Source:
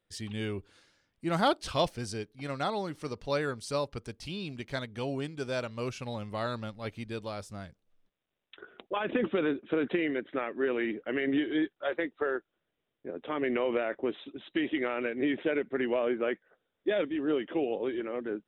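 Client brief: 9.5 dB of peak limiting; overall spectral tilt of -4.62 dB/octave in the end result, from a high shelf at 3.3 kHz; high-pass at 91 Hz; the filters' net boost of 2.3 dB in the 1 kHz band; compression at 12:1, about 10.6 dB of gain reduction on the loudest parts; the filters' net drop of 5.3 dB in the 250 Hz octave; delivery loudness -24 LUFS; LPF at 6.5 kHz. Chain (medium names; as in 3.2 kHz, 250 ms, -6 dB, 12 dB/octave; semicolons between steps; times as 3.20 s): high-pass 91 Hz; low-pass 6.5 kHz; peaking EQ 250 Hz -7.5 dB; peaking EQ 1 kHz +3 dB; treble shelf 3.3 kHz +5 dB; compression 12:1, threshold -30 dBFS; trim +16 dB; peak limiter -12.5 dBFS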